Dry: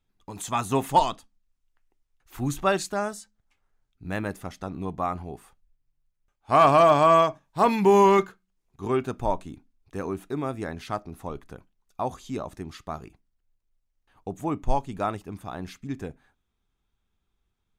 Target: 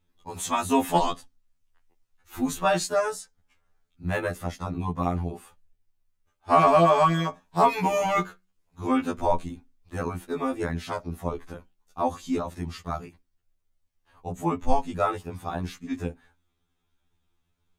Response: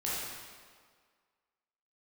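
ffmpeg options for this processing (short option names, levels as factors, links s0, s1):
-filter_complex "[0:a]acrossover=split=460[s0][s1];[s1]acompressor=threshold=0.0708:ratio=2[s2];[s0][s2]amix=inputs=2:normalize=0,afftfilt=real='re*2*eq(mod(b,4),0)':imag='im*2*eq(mod(b,4),0)':win_size=2048:overlap=0.75,volume=1.88"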